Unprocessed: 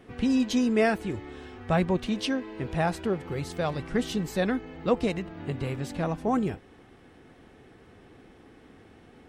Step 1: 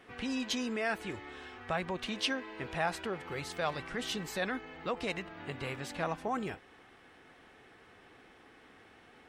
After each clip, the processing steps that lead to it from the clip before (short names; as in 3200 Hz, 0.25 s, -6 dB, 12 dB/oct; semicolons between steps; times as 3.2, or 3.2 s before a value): high shelf 2900 Hz -10.5 dB; limiter -20.5 dBFS, peak gain reduction 9 dB; tilt shelf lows -10 dB, about 680 Hz; gain -2.5 dB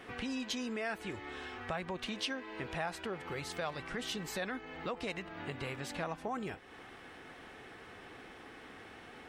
compressor 2:1, threshold -50 dBFS, peak gain reduction 12.5 dB; gain +6.5 dB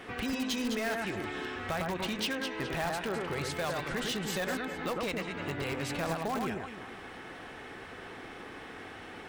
echo with dull and thin repeats by turns 0.104 s, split 1900 Hz, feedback 60%, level -3 dB; in parallel at -8.5 dB: wrapped overs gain 30.5 dB; on the sum: gain +2 dB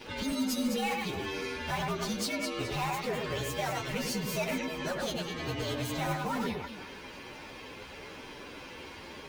inharmonic rescaling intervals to 118%; gain +4 dB